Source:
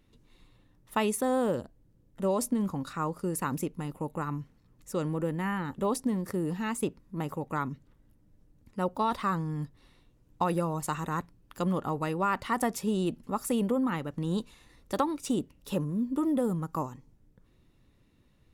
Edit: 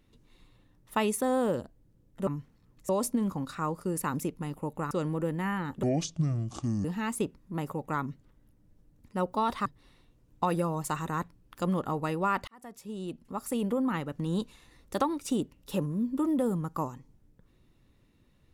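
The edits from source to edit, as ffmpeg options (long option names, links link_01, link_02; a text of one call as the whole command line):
ffmpeg -i in.wav -filter_complex "[0:a]asplit=8[link_01][link_02][link_03][link_04][link_05][link_06][link_07][link_08];[link_01]atrim=end=2.272[link_09];[link_02]atrim=start=4.288:end=4.912[link_10];[link_03]atrim=start=2.268:end=4.292[link_11];[link_04]atrim=start=4.908:end=5.834[link_12];[link_05]atrim=start=5.83:end=6.47,asetpts=PTS-STARTPTS,asetrate=27783,aresample=44100[link_13];[link_06]atrim=start=6.466:end=9.282[link_14];[link_07]atrim=start=9.638:end=12.46,asetpts=PTS-STARTPTS,afade=type=out:start_time=2.818:duration=0.004:curve=hsin[link_15];[link_08]atrim=start=12.46,asetpts=PTS-STARTPTS,afade=type=in:duration=1.47[link_16];[link_09][link_10]acrossfade=duration=0.004:curve1=hsin:curve2=hsin[link_17];[link_17][link_11]acrossfade=duration=0.004:curve1=hsin:curve2=hsin[link_18];[link_18][link_12]acrossfade=duration=0.004:curve1=hsin:curve2=hsin[link_19];[link_19][link_13]acrossfade=duration=0.004:curve1=hsin:curve2=hsin[link_20];[link_20][link_14]acrossfade=duration=0.004:curve1=hsin:curve2=hsin[link_21];[link_15][link_16]concat=n=2:v=0:a=1[link_22];[link_21][link_22]acrossfade=duration=0.004:curve1=hsin:curve2=hsin" out.wav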